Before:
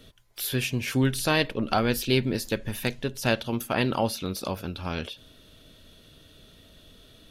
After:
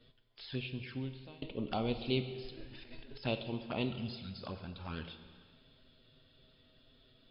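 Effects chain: de-hum 322.5 Hz, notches 36; 2.21–3.21 s: compressor with a negative ratio -40 dBFS, ratio -1; 3.89–4.40 s: brick-wall FIR band-stop 270–1300 Hz; touch-sensitive flanger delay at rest 9.5 ms, full sweep at -24 dBFS; brick-wall FIR low-pass 5.3 kHz; 0.40–1.42 s: fade out; plate-style reverb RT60 1.8 s, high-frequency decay 0.95×, DRR 8.5 dB; trim -9 dB

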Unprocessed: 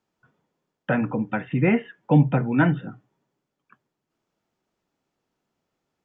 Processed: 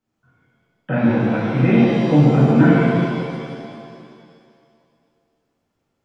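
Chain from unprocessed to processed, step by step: bass shelf 250 Hz +8 dB; pitch-shifted reverb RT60 2.2 s, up +7 st, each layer -8 dB, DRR -9 dB; trim -7 dB

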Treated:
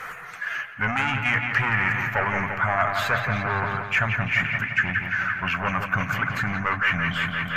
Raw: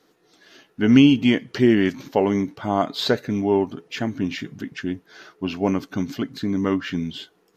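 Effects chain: coarse spectral quantiser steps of 15 dB; peaking EQ 5.2 kHz -6 dB 0.51 oct; in parallel at +1.5 dB: compression, threshold -26 dBFS, peak gain reduction 15.5 dB; on the sum: hum notches 60/120 Hz; saturation -14.5 dBFS, distortion -10 dB; FFT filter 130 Hz 0 dB, 320 Hz -27 dB, 570 Hz -6 dB, 860 Hz -2 dB, 1.3 kHz +10 dB, 2.4 kHz +7 dB, 3.7 kHz -15 dB, 6.9 kHz -5 dB; feedback echo behind a low-pass 172 ms, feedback 68%, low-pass 3.6 kHz, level -7 dB; reverse; upward compressor, threshold -18 dBFS; reverse

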